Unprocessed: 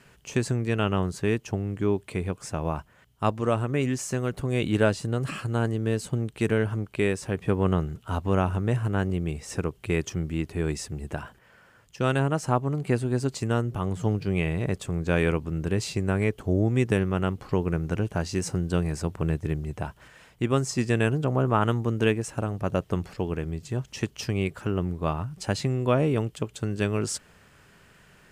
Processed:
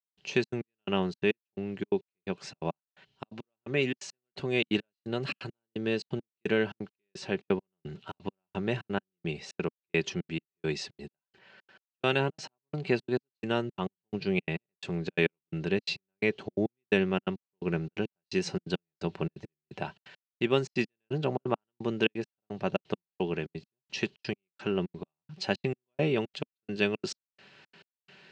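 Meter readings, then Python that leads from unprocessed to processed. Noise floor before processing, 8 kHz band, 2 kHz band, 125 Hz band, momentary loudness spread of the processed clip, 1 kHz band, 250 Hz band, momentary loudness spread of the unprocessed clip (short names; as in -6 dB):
-58 dBFS, -11.5 dB, -1.5 dB, -11.5 dB, 12 LU, -7.5 dB, -6.0 dB, 8 LU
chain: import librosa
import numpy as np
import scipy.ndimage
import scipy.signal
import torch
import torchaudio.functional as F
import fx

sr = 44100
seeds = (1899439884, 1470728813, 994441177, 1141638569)

y = x + 0.36 * np.pad(x, (int(5.2 * sr / 1000.0), 0))[:len(x)]
y = fx.step_gate(y, sr, bpm=172, pattern='..xxx.x.', floor_db=-60.0, edge_ms=4.5)
y = fx.cabinet(y, sr, low_hz=200.0, low_slope=12, high_hz=5300.0, hz=(240.0, 530.0, 1200.0, 2700.0, 4100.0), db=(-4, -3, -7, 6, 8))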